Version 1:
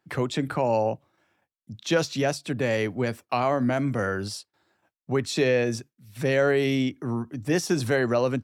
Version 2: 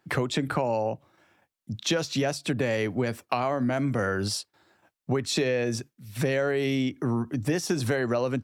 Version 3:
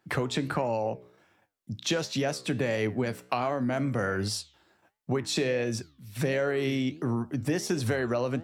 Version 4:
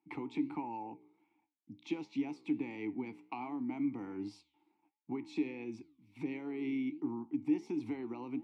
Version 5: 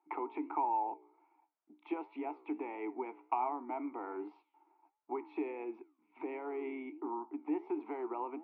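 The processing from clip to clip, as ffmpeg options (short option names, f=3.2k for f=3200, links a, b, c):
-af "acompressor=threshold=-29dB:ratio=6,volume=6dB"
-af "flanger=delay=9.1:depth=7.6:regen=84:speed=1.4:shape=sinusoidal,volume=2.5dB"
-filter_complex "[0:a]asplit=3[a][b][c];[a]bandpass=f=300:t=q:w=8,volume=0dB[d];[b]bandpass=f=870:t=q:w=8,volume=-6dB[e];[c]bandpass=f=2.24k:t=q:w=8,volume=-9dB[f];[d][e][f]amix=inputs=3:normalize=0,volume=1dB"
-af "highpass=f=380:w=0.5412,highpass=f=380:w=1.3066,equalizer=f=380:t=q:w=4:g=6,equalizer=f=660:t=q:w=4:g=9,equalizer=f=940:t=q:w=4:g=8,equalizer=f=1.3k:t=q:w=4:g=8,equalizer=f=1.9k:t=q:w=4:g=-3,lowpass=f=2.2k:w=0.5412,lowpass=f=2.2k:w=1.3066,volume=2dB"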